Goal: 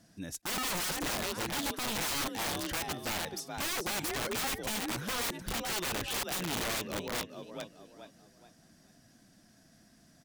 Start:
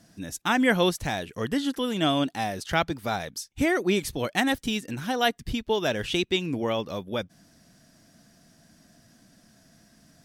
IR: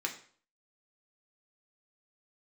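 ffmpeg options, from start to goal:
-filter_complex "[0:a]asplit=5[s0][s1][s2][s3][s4];[s1]adelay=427,afreqshift=40,volume=0.376[s5];[s2]adelay=854,afreqshift=80,volume=0.127[s6];[s3]adelay=1281,afreqshift=120,volume=0.0437[s7];[s4]adelay=1708,afreqshift=160,volume=0.0148[s8];[s0][s5][s6][s7][s8]amix=inputs=5:normalize=0,aeval=exprs='(mod(15*val(0)+1,2)-1)/15':c=same,volume=0.562"

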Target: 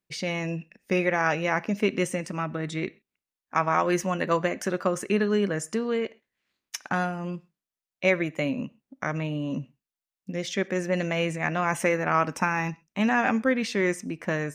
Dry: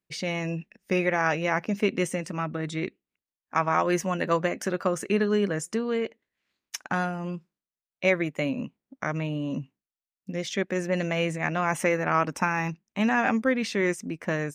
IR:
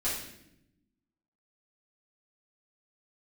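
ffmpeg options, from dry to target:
-filter_complex "[0:a]asplit=2[s0][s1];[s1]equalizer=f=260:w=0.66:g=-7.5[s2];[1:a]atrim=start_sample=2205,atrim=end_sample=6174,highshelf=f=9400:g=-11[s3];[s2][s3]afir=irnorm=-1:irlink=0,volume=0.0841[s4];[s0][s4]amix=inputs=2:normalize=0"

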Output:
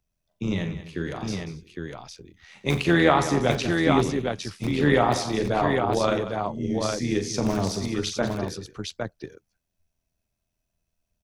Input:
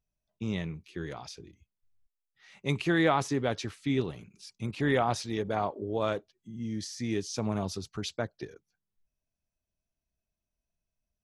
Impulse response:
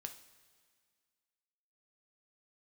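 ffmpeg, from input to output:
-filter_complex "[0:a]acrossover=split=120|1400[s0][s1][s2];[s0]aeval=exprs='(mod(59.6*val(0)+1,2)-1)/59.6':c=same[s3];[s3][s1][s2]amix=inputs=3:normalize=0,tremolo=f=83:d=0.621,aecho=1:1:41|89|188|260|809:0.355|0.188|0.224|0.106|0.631,volume=2.66"

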